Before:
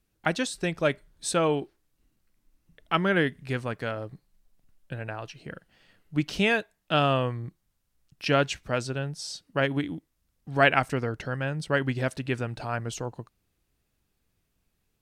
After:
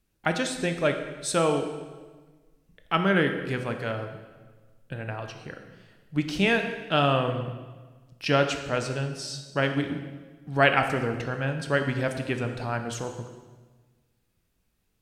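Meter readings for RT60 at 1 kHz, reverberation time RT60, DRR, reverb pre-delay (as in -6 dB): 1.3 s, 1.4 s, 5.5 dB, 14 ms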